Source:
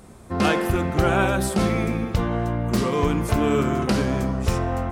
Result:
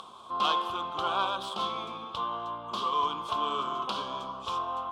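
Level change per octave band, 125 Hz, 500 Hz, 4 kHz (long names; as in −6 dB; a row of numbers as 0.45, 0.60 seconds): −28.5, −15.0, +0.5 decibels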